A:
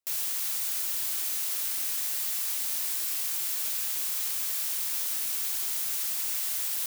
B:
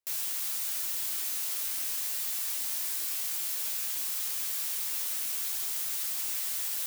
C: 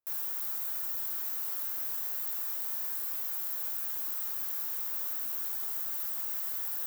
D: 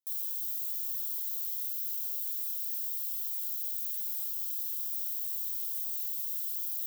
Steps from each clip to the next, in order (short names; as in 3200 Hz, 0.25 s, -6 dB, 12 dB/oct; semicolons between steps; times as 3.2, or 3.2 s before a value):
flange 0.88 Hz, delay 9.6 ms, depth 1.5 ms, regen +47%; gain +2 dB
band shelf 4800 Hz -12.5 dB 2.7 oct
steep high-pass 3000 Hz 96 dB/oct